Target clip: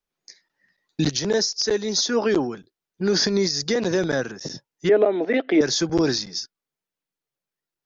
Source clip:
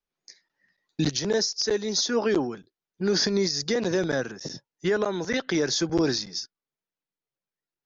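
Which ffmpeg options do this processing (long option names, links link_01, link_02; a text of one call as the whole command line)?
ffmpeg -i in.wav -filter_complex "[0:a]asettb=1/sr,asplit=3[link_01][link_02][link_03];[link_01]atrim=end=4.894[link_04];[link_02]atrim=start=4.89:end=5.61,asetpts=PTS-STARTPTS,afade=type=in:duration=0.004:curve=qsin,afade=type=out:start_time=0.716:duration=0.004:curve=qsin,highpass=frequency=230:width=0.5412,highpass=frequency=230:width=1.3066,equalizer=frequency=290:width_type=q:width=4:gain=8,equalizer=frequency=440:width_type=q:width=4:gain=5,equalizer=frequency=670:width_type=q:width=4:gain=10,equalizer=frequency=1000:width_type=q:width=4:gain=-8,equalizer=frequency=1500:width_type=q:width=4:gain=-7,equalizer=frequency=2300:width_type=q:width=4:gain=4,lowpass=frequency=2900:width=0.5412,lowpass=frequency=2900:width=1.3066[link_05];[link_03]atrim=start=5.606[link_06];[link_04][link_05]acrossfade=duration=0.004:curve1=hsin:curve2=qsin[link_07];[link_07][link_06]acrossfade=duration=0.004:curve1=qsin:curve2=hsin,volume=3dB" out.wav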